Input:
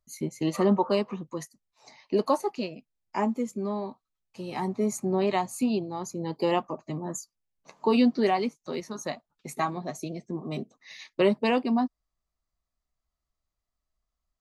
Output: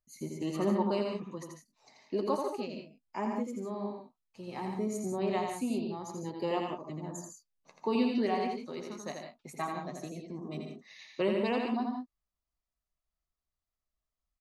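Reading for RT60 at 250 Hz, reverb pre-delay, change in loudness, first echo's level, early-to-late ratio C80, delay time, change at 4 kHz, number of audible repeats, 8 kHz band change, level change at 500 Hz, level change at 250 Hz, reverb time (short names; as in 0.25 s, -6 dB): none, none, -6.0 dB, -4.5 dB, none, 84 ms, -6.5 dB, 3, -7.5 dB, -6.0 dB, -6.0 dB, none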